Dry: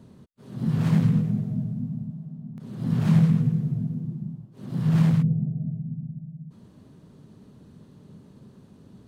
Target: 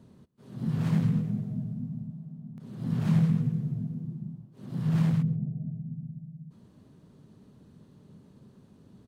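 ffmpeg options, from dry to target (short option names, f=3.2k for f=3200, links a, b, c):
-filter_complex "[0:a]asplit=2[a][b];[b]adelay=134.1,volume=-22dB,highshelf=f=4k:g=-3.02[c];[a][c]amix=inputs=2:normalize=0,volume=-5dB"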